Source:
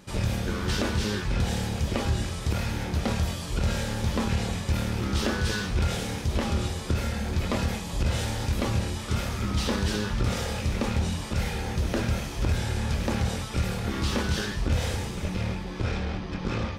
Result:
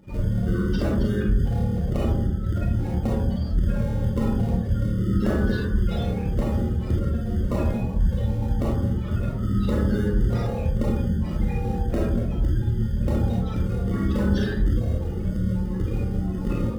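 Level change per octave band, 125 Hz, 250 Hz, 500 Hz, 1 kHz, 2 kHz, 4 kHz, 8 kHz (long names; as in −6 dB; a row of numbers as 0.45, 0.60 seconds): +4.5 dB, +6.0 dB, +3.0 dB, −3.0 dB, −6.0 dB, −11.0 dB, below −10 dB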